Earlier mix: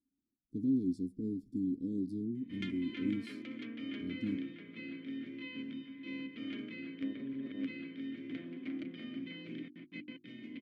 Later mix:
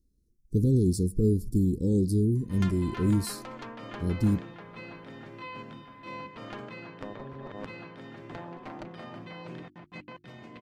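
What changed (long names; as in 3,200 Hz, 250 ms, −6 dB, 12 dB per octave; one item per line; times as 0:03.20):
background −10.0 dB
master: remove formant filter i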